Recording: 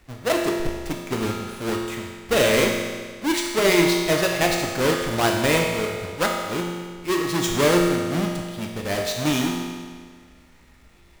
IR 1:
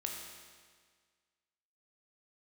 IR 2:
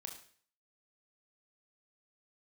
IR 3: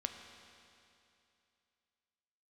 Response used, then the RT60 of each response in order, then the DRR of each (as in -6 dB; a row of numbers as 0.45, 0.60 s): 1; 1.7, 0.50, 2.7 s; 0.0, 2.5, 4.5 dB